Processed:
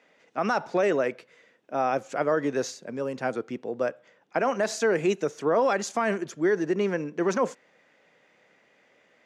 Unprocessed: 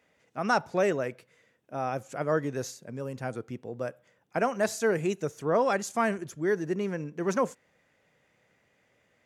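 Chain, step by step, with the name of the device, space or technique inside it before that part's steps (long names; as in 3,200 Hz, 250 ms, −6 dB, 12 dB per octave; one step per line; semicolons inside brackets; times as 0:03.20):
DJ mixer with the lows and highs turned down (three-way crossover with the lows and the highs turned down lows −21 dB, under 190 Hz, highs −17 dB, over 6,800 Hz; brickwall limiter −22 dBFS, peak gain reduction 10 dB)
0:03.85–0:04.51: low-pass filter 7,900 Hz
level +7 dB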